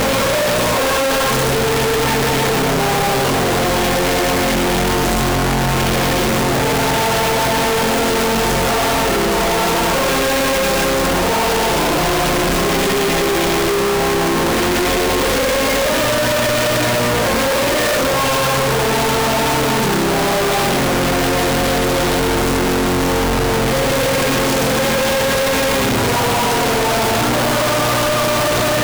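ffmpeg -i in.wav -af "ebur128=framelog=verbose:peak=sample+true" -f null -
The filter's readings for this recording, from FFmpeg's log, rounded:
Integrated loudness:
  I:         -15.3 LUFS
  Threshold: -25.3 LUFS
Loudness range:
  LRA:         0.5 LU
  Threshold: -35.4 LUFS
  LRA low:   -15.6 LUFS
  LRA high:  -15.1 LUFS
Sample peak:
  Peak:      -15.7 dBFS
True peak:
  Peak:      -10.9 dBFS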